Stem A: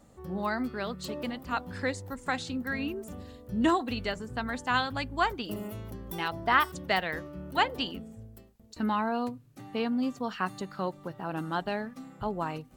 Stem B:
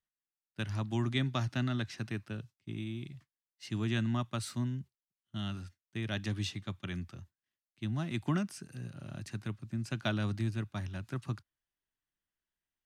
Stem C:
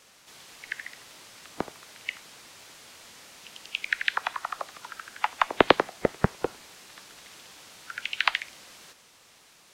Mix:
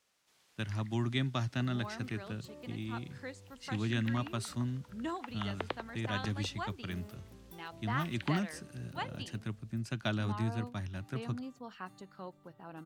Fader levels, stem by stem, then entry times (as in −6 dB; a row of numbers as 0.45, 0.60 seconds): −13.5, −1.0, −20.0 decibels; 1.40, 0.00, 0.00 seconds